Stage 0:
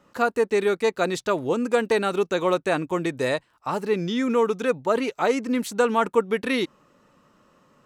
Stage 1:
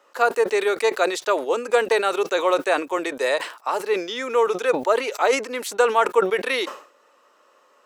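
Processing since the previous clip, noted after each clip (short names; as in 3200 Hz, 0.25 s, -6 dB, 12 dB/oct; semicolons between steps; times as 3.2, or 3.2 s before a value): HPF 420 Hz 24 dB/oct; sustainer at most 120 dB/s; gain +3.5 dB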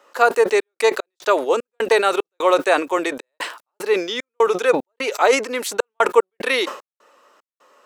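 step gate "xxx.x.xx.xx.x" 75 bpm -60 dB; gain +4 dB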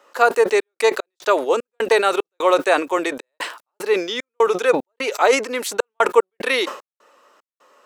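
nothing audible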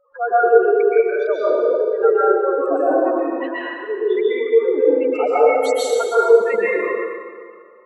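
spectral contrast raised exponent 4; plate-style reverb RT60 2 s, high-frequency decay 0.75×, pre-delay 0.11 s, DRR -9.5 dB; gain -6.5 dB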